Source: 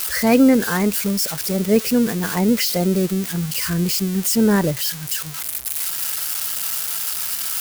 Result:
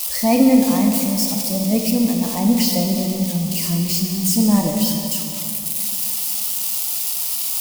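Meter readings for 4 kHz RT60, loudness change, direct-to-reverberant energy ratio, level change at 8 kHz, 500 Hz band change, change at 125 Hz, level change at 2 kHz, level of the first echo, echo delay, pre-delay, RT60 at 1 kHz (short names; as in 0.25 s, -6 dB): 2.5 s, +1.0 dB, 1.5 dB, +2.0 dB, -3.5 dB, +0.5 dB, -7.5 dB, none, none, 7 ms, 2.6 s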